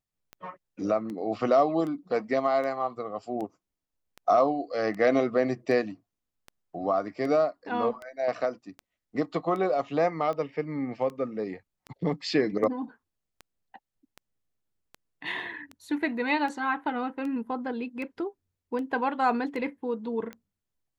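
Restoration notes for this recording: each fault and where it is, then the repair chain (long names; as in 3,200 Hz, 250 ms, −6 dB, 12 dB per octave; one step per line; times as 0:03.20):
scratch tick 78 rpm −26 dBFS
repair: click removal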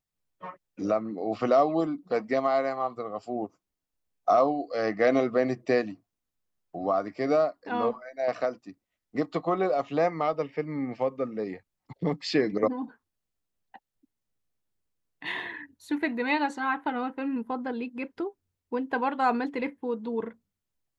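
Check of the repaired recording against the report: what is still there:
none of them is left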